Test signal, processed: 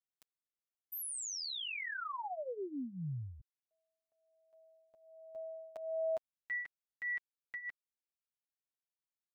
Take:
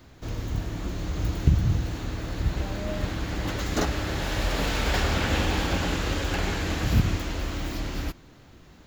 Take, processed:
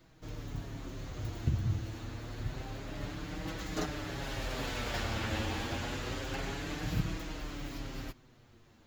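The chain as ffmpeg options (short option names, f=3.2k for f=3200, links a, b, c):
-af "flanger=delay=6.1:depth=3.1:regen=1:speed=0.28:shape=triangular,volume=-6.5dB"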